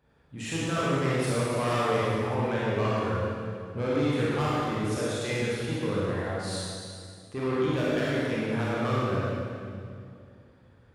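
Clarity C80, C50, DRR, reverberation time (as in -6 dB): -3.0 dB, -5.0 dB, -8.5 dB, 2.4 s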